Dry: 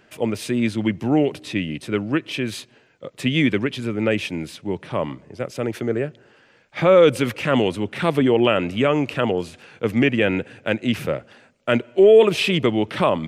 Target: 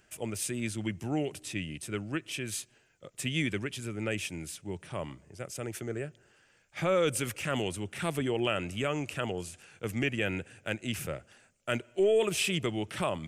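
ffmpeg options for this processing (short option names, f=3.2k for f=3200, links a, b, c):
-af "equalizer=f=125:t=o:w=1:g=-7,equalizer=f=250:t=o:w=1:g=-12,equalizer=f=500:t=o:w=1:g=-10,equalizer=f=1k:t=o:w=1:g=-10,equalizer=f=2k:t=o:w=1:g=-6,equalizer=f=4k:t=o:w=1:g=-10,equalizer=f=8k:t=o:w=1:g=6"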